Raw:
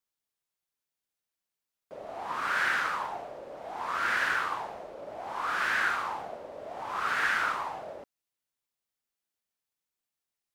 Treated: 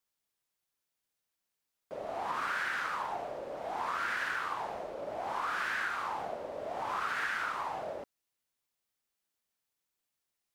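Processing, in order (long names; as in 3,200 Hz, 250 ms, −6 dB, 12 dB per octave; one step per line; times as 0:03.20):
downward compressor 6 to 1, threshold −34 dBFS, peak gain reduction 10.5 dB
level +2.5 dB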